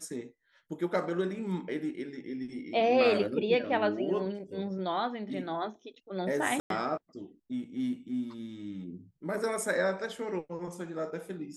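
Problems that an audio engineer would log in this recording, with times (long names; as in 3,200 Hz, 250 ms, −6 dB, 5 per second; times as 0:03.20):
0:06.60–0:06.70: drop-out 102 ms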